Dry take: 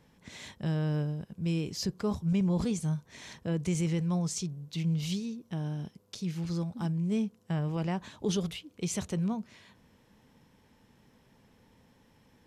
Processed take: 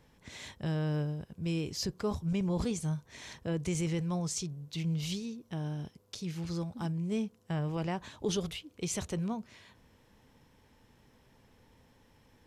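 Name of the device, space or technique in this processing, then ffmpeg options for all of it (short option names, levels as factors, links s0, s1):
low shelf boost with a cut just above: -af "lowshelf=f=64:g=6,equalizer=f=190:t=o:w=0.73:g=-5.5"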